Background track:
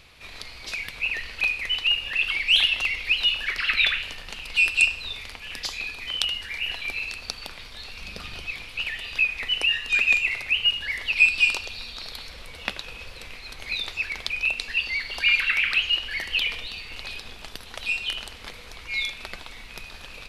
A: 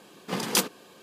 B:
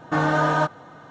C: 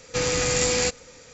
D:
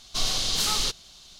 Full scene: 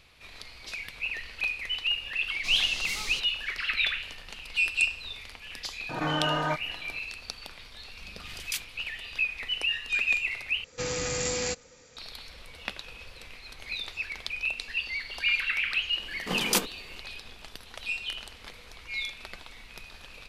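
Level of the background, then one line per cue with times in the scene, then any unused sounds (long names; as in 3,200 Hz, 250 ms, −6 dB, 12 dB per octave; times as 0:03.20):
background track −6 dB
0:02.29: mix in D −11 dB
0:05.89: mix in B −8 dB + background raised ahead of every attack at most 76 dB per second
0:07.97: mix in A −3 dB + four-pole ladder high-pass 1,700 Hz, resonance 30%
0:10.64: overwrite with C −7.5 dB
0:15.98: mix in A −1.5 dB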